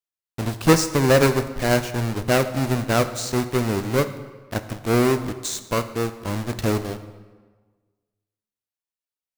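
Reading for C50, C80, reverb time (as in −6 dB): 12.0 dB, 13.5 dB, 1.4 s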